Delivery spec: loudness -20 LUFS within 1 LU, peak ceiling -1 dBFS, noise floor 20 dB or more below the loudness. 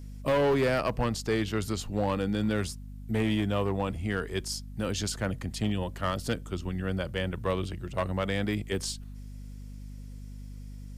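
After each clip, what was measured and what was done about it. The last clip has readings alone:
clipped samples 1.1%; clipping level -20.5 dBFS; hum 50 Hz; highest harmonic 250 Hz; hum level -41 dBFS; loudness -30.5 LUFS; peak level -20.5 dBFS; loudness target -20.0 LUFS
-> clip repair -20.5 dBFS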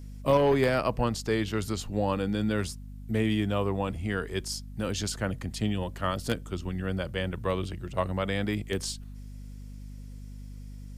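clipped samples 0.0%; hum 50 Hz; highest harmonic 250 Hz; hum level -40 dBFS
-> de-hum 50 Hz, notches 5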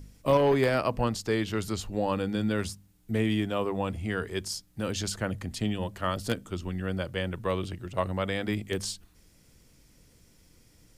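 hum not found; loudness -30.0 LUFS; peak level -11.5 dBFS; loudness target -20.0 LUFS
-> trim +10 dB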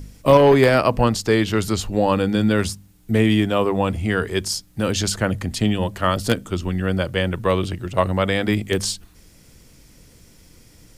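loudness -20.0 LUFS; peak level -1.5 dBFS; noise floor -51 dBFS

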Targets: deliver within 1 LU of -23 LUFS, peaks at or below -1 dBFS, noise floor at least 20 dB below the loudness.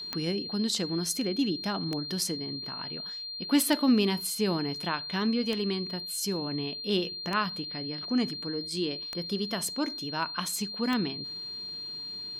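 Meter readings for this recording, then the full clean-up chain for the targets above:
clicks found 7; steady tone 4.2 kHz; tone level -36 dBFS; loudness -30.0 LUFS; peak level -12.5 dBFS; loudness target -23.0 LUFS
-> de-click; band-stop 4.2 kHz, Q 30; trim +7 dB

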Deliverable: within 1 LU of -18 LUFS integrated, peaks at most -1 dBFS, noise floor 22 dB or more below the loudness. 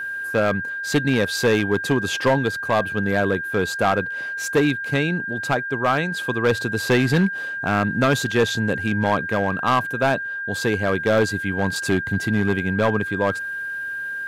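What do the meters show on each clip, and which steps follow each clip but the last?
clipped samples 1.6%; clipping level -12.0 dBFS; steady tone 1.6 kHz; tone level -26 dBFS; loudness -21.5 LUFS; peak level -12.0 dBFS; loudness target -18.0 LUFS
-> clip repair -12 dBFS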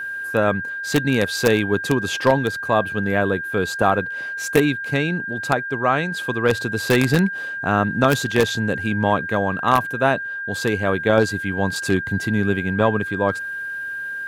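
clipped samples 0.0%; steady tone 1.6 kHz; tone level -26 dBFS
-> band-stop 1.6 kHz, Q 30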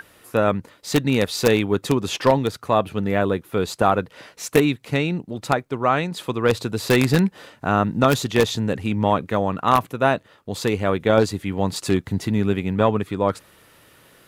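steady tone not found; loudness -21.5 LUFS; peak level -2.5 dBFS; loudness target -18.0 LUFS
-> trim +3.5 dB; peak limiter -1 dBFS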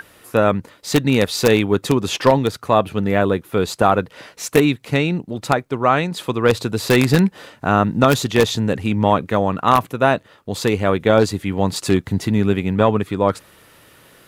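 loudness -18.0 LUFS; peak level -1.0 dBFS; noise floor -50 dBFS

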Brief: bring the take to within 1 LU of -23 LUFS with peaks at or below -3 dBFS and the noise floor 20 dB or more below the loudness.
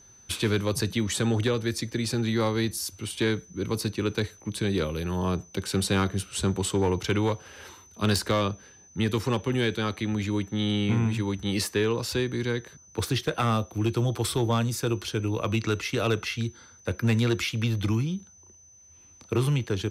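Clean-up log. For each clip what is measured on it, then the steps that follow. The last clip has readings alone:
clipped samples 0.5%; clipping level -17.0 dBFS; steady tone 6.1 kHz; tone level -52 dBFS; loudness -27.5 LUFS; peak level -17.0 dBFS; loudness target -23.0 LUFS
-> clip repair -17 dBFS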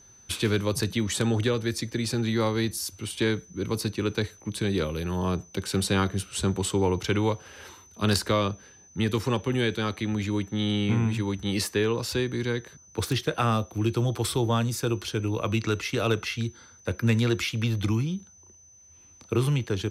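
clipped samples 0.0%; steady tone 6.1 kHz; tone level -52 dBFS
-> band-stop 6.1 kHz, Q 30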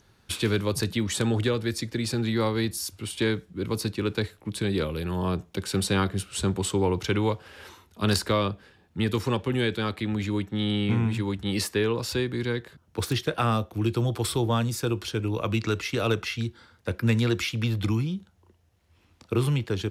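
steady tone not found; loudness -27.5 LUFS; peak level -8.0 dBFS; loudness target -23.0 LUFS
-> trim +4.5 dB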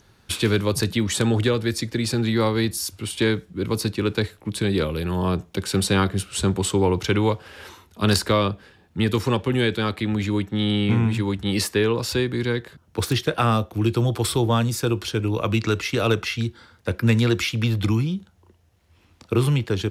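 loudness -23.0 LUFS; peak level -3.5 dBFS; noise floor -58 dBFS

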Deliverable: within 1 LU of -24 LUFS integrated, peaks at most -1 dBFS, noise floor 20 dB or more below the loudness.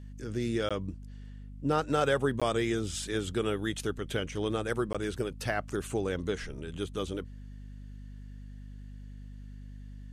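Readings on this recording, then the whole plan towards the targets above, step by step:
dropouts 3; longest dropout 16 ms; hum 50 Hz; highest harmonic 250 Hz; hum level -42 dBFS; loudness -32.5 LUFS; peak level -14.5 dBFS; loudness target -24.0 LUFS
-> interpolate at 0.69/2.40/4.93 s, 16 ms; de-hum 50 Hz, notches 5; trim +8.5 dB

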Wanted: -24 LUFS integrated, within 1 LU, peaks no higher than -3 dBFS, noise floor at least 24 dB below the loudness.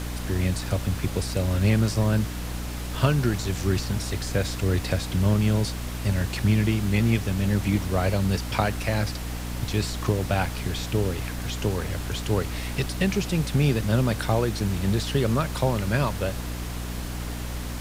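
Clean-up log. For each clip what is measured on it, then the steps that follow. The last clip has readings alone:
hum 60 Hz; highest harmonic 300 Hz; hum level -30 dBFS; noise floor -32 dBFS; noise floor target -50 dBFS; loudness -25.5 LUFS; peak level -7.5 dBFS; loudness target -24.0 LUFS
-> de-hum 60 Hz, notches 5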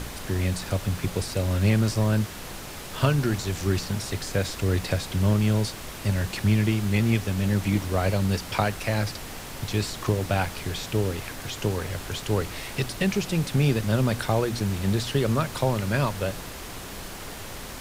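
hum not found; noise floor -38 dBFS; noise floor target -50 dBFS
-> noise print and reduce 12 dB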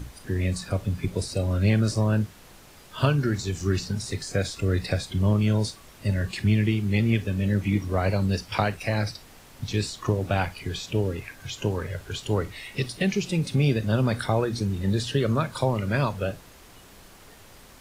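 noise floor -50 dBFS; loudness -26.0 LUFS; peak level -8.0 dBFS; loudness target -24.0 LUFS
-> trim +2 dB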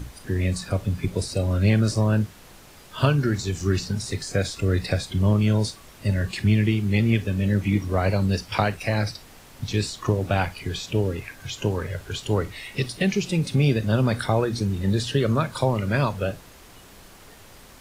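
loudness -24.0 LUFS; peak level -6.0 dBFS; noise floor -48 dBFS

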